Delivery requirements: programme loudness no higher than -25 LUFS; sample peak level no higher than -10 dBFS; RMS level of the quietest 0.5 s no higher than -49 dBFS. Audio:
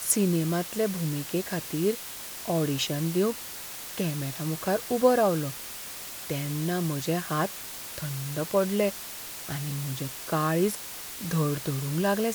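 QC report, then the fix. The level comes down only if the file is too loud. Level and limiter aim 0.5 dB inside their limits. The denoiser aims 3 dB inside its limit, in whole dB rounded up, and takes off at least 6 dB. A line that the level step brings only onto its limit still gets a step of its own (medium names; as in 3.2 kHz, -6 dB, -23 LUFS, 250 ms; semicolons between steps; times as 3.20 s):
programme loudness -28.5 LUFS: pass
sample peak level -9.0 dBFS: fail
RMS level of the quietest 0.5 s -39 dBFS: fail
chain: noise reduction 13 dB, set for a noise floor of -39 dBFS; peak limiter -10.5 dBFS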